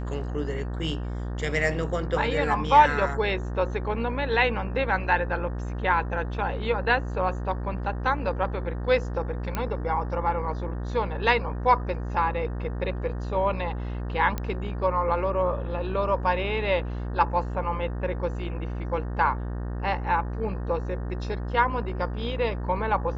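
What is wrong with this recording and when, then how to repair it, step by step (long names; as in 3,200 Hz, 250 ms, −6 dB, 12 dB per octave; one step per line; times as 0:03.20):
mains buzz 60 Hz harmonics 31 −31 dBFS
0:09.55: click −14 dBFS
0:14.38: click −15 dBFS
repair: click removal
hum removal 60 Hz, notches 31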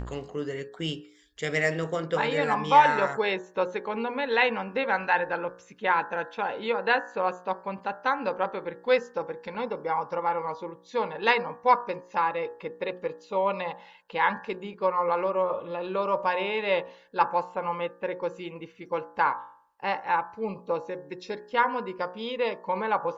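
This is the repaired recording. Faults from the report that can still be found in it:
none of them is left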